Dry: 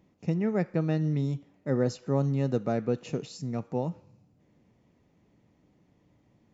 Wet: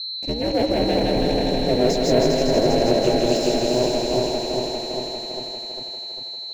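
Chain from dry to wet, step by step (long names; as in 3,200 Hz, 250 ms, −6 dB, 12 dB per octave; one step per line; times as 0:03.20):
feedback delay that plays each chunk backwards 200 ms, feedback 76%, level −0.5 dB
leveller curve on the samples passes 3
steady tone 4,100 Hz −27 dBFS
phaser with its sweep stopped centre 480 Hz, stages 4
ring modulation 120 Hz
on a send: feedback echo with a high-pass in the loop 161 ms, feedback 80%, high-pass 390 Hz, level −4 dB
on the sum: level +3.5 dB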